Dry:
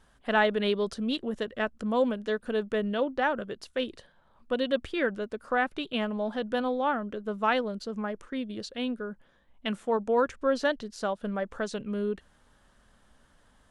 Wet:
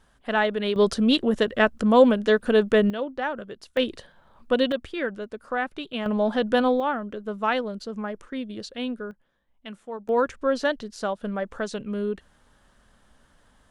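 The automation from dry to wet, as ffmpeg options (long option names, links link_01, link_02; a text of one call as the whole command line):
ffmpeg -i in.wav -af "asetnsamples=nb_out_samples=441:pad=0,asendcmd='0.76 volume volume 10dB;2.9 volume volume -1.5dB;3.77 volume volume 7dB;4.72 volume volume -0.5dB;6.06 volume volume 8dB;6.8 volume volume 1.5dB;9.11 volume volume -8dB;10.09 volume volume 2.5dB',volume=1dB" out.wav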